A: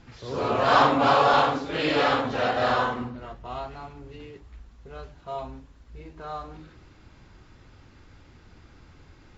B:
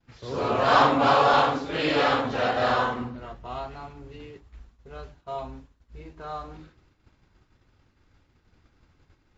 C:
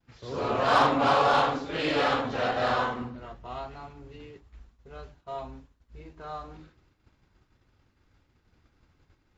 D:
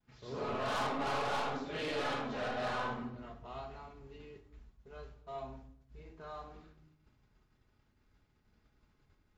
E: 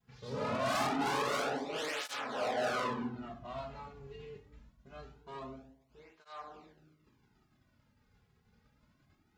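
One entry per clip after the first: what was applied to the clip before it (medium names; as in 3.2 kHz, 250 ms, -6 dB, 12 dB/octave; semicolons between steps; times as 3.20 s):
expander -42 dBFS
Chebyshev shaper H 8 -30 dB, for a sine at -7 dBFS; trim -3 dB
saturation -25.5 dBFS, distortion -8 dB; reverberation RT60 0.65 s, pre-delay 5 ms, DRR 5 dB; trim -7.5 dB
self-modulated delay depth 0.14 ms; cancelling through-zero flanger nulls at 0.24 Hz, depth 3.4 ms; trim +5.5 dB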